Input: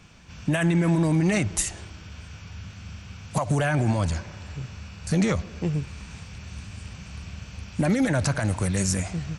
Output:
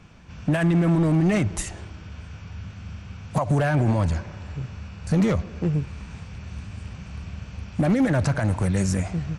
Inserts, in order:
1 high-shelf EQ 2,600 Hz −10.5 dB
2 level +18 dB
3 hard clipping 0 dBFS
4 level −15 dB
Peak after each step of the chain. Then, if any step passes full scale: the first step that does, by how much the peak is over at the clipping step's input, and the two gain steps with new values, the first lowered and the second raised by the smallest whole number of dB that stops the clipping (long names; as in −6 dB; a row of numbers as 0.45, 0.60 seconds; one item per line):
−12.5, +5.5, 0.0, −15.0 dBFS
step 2, 5.5 dB
step 2 +12 dB, step 4 −9 dB